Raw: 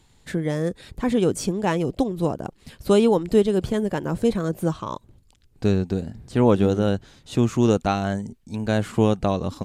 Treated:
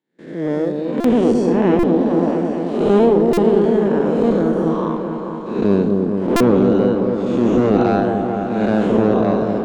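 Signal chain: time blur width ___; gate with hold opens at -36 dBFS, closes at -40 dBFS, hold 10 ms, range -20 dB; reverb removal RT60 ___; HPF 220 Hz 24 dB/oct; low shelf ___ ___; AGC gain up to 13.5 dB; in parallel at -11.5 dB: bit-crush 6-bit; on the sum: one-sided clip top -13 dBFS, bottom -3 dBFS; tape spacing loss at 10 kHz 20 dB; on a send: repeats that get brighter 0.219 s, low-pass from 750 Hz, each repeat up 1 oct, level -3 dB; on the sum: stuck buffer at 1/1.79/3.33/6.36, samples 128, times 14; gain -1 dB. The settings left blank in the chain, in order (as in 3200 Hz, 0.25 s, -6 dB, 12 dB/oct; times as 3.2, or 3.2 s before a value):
0.277 s, 1.9 s, 330 Hz, +4.5 dB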